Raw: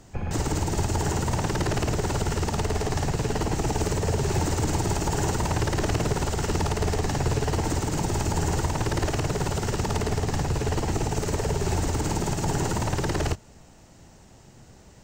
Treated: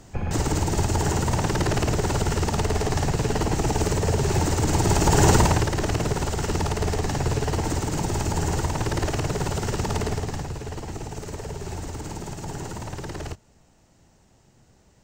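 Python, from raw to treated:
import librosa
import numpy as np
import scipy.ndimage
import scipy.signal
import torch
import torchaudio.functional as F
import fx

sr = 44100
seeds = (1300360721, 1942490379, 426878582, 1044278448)

y = fx.gain(x, sr, db=fx.line((4.63, 2.5), (5.36, 10.0), (5.7, 0.5), (10.05, 0.5), (10.6, -7.5)))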